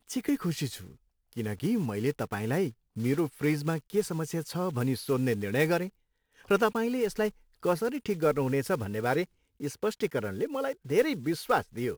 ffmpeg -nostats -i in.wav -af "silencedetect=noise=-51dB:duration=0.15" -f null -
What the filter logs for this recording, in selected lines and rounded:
silence_start: 0.96
silence_end: 1.33 | silence_duration: 0.37
silence_start: 2.72
silence_end: 2.96 | silence_duration: 0.24
silence_start: 5.89
silence_end: 6.33 | silence_duration: 0.43
silence_start: 7.32
silence_end: 7.55 | silence_duration: 0.23
silence_start: 9.25
silence_end: 9.60 | silence_duration: 0.35